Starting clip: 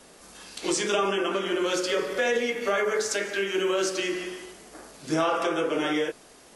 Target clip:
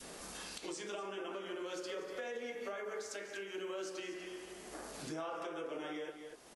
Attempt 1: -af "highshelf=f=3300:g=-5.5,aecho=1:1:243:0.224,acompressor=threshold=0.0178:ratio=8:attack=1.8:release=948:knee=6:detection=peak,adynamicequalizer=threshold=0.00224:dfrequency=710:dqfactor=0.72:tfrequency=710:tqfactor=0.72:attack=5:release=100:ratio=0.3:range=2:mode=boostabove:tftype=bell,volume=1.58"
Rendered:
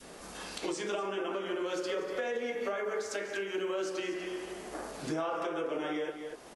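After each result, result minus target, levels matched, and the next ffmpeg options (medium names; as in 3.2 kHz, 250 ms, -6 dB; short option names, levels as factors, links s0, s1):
compression: peak gain reduction -8.5 dB; 8 kHz band -5.0 dB
-af "highshelf=f=3300:g=-5.5,aecho=1:1:243:0.224,acompressor=threshold=0.00631:ratio=8:attack=1.8:release=948:knee=6:detection=peak,adynamicequalizer=threshold=0.00224:dfrequency=710:dqfactor=0.72:tfrequency=710:tqfactor=0.72:attack=5:release=100:ratio=0.3:range=2:mode=boostabove:tftype=bell,volume=1.58"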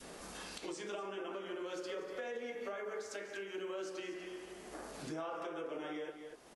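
8 kHz band -3.5 dB
-af "aecho=1:1:243:0.224,acompressor=threshold=0.00631:ratio=8:attack=1.8:release=948:knee=6:detection=peak,adynamicequalizer=threshold=0.00224:dfrequency=710:dqfactor=0.72:tfrequency=710:tqfactor=0.72:attack=5:release=100:ratio=0.3:range=2:mode=boostabove:tftype=bell,volume=1.58"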